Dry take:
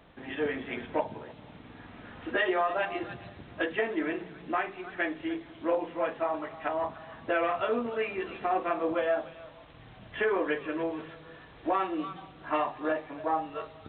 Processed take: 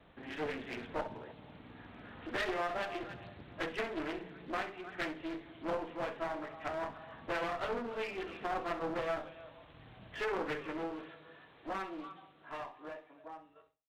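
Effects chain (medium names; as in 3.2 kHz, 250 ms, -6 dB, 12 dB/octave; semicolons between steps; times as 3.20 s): fade out at the end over 3.05 s; gate with hold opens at -50 dBFS; 10.99–13.25 s: high-pass 250 Hz 6 dB/octave; one-sided clip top -38 dBFS; flutter echo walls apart 11.3 m, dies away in 0.27 s; loudspeaker Doppler distortion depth 0.41 ms; trim -4.5 dB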